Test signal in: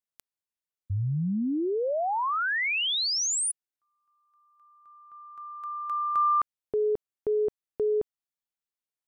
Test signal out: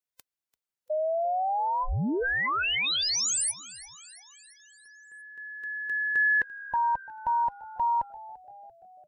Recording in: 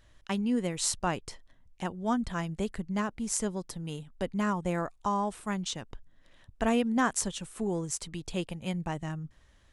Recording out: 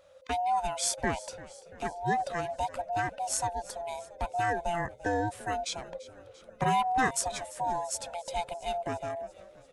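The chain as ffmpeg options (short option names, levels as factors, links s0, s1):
-filter_complex "[0:a]afftfilt=real='real(if(lt(b,1008),b+24*(1-2*mod(floor(b/24),2)),b),0)':imag='imag(if(lt(b,1008),b+24*(1-2*mod(floor(b/24),2)),b),0)':win_size=2048:overlap=0.75,asplit=2[s0][s1];[s1]asplit=5[s2][s3][s4][s5][s6];[s2]adelay=341,afreqshift=-67,volume=0.119[s7];[s3]adelay=682,afreqshift=-134,volume=0.07[s8];[s4]adelay=1023,afreqshift=-201,volume=0.0412[s9];[s5]adelay=1364,afreqshift=-268,volume=0.0245[s10];[s6]adelay=1705,afreqshift=-335,volume=0.0145[s11];[s7][s8][s9][s10][s11]amix=inputs=5:normalize=0[s12];[s0][s12]amix=inputs=2:normalize=0"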